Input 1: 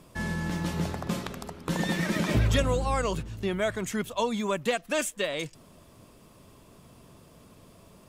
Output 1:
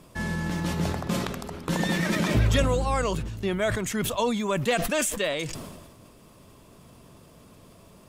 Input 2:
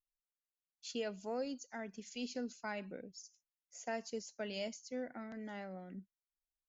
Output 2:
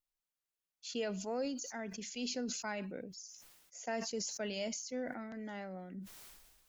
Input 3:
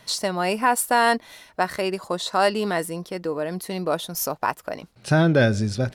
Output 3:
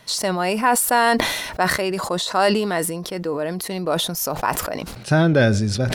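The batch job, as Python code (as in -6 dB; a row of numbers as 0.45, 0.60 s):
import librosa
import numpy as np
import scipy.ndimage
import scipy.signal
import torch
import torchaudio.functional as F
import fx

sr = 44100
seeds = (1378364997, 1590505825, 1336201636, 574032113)

y = fx.sustainer(x, sr, db_per_s=41.0)
y = y * librosa.db_to_amplitude(1.5)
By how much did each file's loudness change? +2.5, +3.5, +2.5 LU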